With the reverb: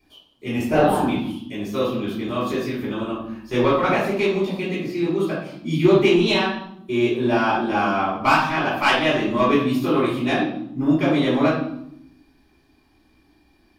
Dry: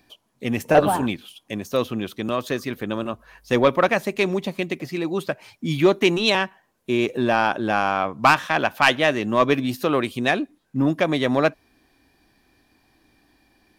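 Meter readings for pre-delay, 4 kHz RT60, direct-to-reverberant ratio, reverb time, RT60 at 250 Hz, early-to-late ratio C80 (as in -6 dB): 3 ms, 0.60 s, -11.0 dB, 0.80 s, 1.2 s, 6.5 dB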